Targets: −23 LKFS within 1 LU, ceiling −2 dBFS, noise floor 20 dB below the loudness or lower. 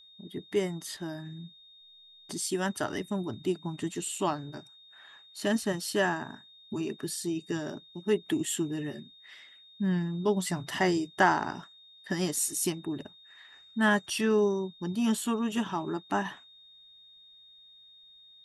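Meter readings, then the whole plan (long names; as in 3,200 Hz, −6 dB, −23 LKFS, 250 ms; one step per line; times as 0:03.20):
interfering tone 3,700 Hz; level of the tone −53 dBFS; integrated loudness −30.5 LKFS; sample peak −10.5 dBFS; target loudness −23.0 LKFS
→ notch filter 3,700 Hz, Q 30
level +7.5 dB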